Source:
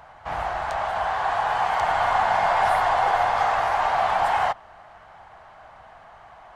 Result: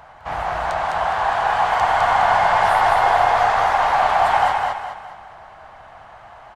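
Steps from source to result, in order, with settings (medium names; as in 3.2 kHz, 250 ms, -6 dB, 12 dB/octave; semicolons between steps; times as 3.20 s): feedback delay 207 ms, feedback 39%, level -3 dB; trim +3 dB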